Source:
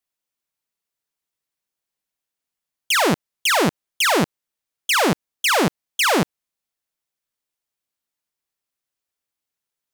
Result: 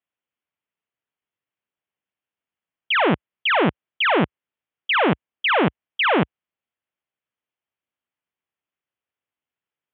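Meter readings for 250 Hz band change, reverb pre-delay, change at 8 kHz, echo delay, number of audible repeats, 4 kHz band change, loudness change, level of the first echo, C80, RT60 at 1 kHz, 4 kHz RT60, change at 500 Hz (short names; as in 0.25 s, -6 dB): 0.0 dB, none, under -40 dB, none, none, -3.0 dB, -1.0 dB, none, none, none, none, 0.0 dB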